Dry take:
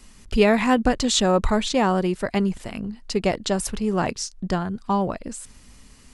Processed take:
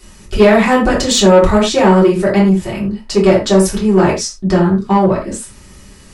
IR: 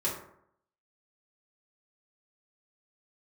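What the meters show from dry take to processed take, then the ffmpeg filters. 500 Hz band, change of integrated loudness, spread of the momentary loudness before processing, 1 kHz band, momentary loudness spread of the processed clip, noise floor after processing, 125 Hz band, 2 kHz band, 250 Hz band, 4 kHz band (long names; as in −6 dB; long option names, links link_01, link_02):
+12.0 dB, +10.5 dB, 13 LU, +8.5 dB, 10 LU, −40 dBFS, +12.0 dB, +9.0 dB, +11.0 dB, +7.5 dB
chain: -filter_complex "[0:a]bandreject=frequency=1100:width=21[link_01];[1:a]atrim=start_sample=2205,afade=type=out:start_time=0.16:duration=0.01,atrim=end_sample=7497[link_02];[link_01][link_02]afir=irnorm=-1:irlink=0,acontrast=47,volume=-1dB"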